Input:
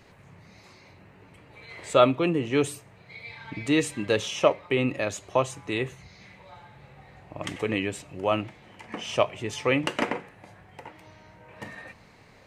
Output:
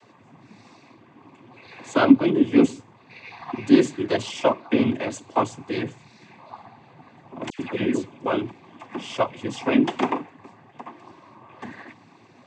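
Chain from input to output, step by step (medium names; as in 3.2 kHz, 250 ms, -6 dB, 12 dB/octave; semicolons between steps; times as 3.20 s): small resonant body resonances 280/900 Hz, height 15 dB, ringing for 65 ms; noise-vocoded speech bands 16; 7.50–8.26 s: phase dispersion lows, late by 94 ms, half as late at 1.6 kHz; trim -1.5 dB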